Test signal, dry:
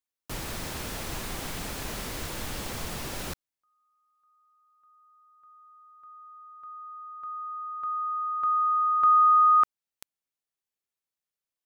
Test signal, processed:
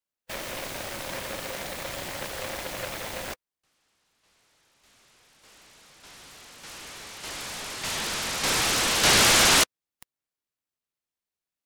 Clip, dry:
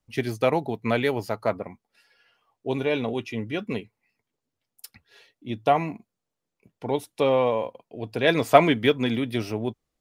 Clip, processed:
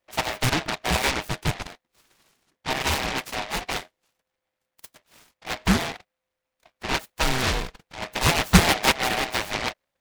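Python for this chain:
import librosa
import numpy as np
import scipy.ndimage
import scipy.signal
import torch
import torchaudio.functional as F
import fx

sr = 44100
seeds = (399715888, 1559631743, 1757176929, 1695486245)

y = fx.band_swap(x, sr, width_hz=500)
y = fx.noise_mod_delay(y, sr, seeds[0], noise_hz=1300.0, depth_ms=0.26)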